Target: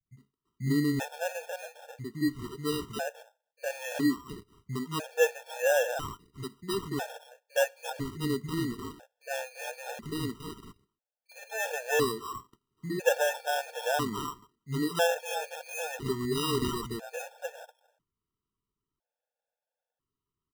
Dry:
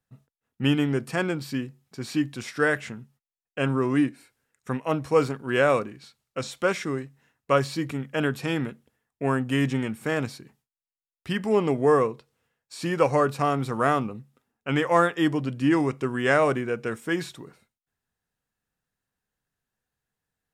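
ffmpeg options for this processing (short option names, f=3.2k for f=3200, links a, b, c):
-filter_complex "[0:a]acrossover=split=190|1300[a][b][c];[b]adelay=60[d];[c]adelay=340[e];[a][d][e]amix=inputs=3:normalize=0,acrusher=samples=20:mix=1:aa=0.000001,afftfilt=real='re*gt(sin(2*PI*0.5*pts/sr)*(1-2*mod(floor(b*sr/1024/460),2)),0)':imag='im*gt(sin(2*PI*0.5*pts/sr)*(1-2*mod(floor(b*sr/1024/460),2)),0)':win_size=1024:overlap=0.75,volume=-2dB"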